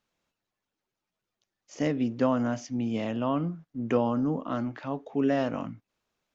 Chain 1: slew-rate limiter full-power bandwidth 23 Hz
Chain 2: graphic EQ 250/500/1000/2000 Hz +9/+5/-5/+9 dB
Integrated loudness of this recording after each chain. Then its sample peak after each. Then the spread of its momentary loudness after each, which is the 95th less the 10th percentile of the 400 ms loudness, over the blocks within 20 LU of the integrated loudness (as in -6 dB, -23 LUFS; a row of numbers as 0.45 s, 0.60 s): -30.5 LUFS, -21.5 LUFS; -16.5 dBFS, -5.5 dBFS; 8 LU, 10 LU